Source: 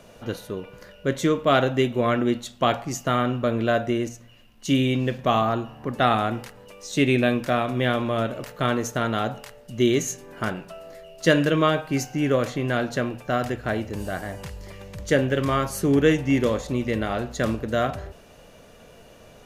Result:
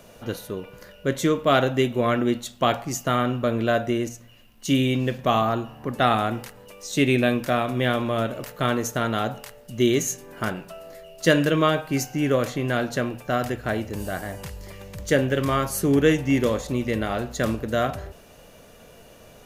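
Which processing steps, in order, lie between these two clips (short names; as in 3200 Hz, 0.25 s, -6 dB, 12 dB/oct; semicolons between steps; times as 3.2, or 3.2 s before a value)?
high shelf 11000 Hz +11 dB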